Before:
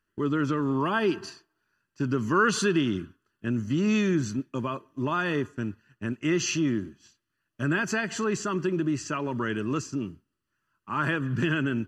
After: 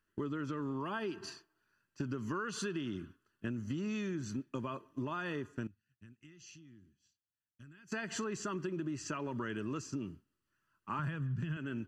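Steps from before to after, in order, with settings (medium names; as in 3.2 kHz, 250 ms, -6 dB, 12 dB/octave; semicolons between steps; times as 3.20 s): 10.99–11.57 s: resonant low shelf 220 Hz +9.5 dB, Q 1.5; compression 10:1, threshold -32 dBFS, peak gain reduction 18 dB; 5.67–7.92 s: amplifier tone stack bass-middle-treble 6-0-2; trim -2.5 dB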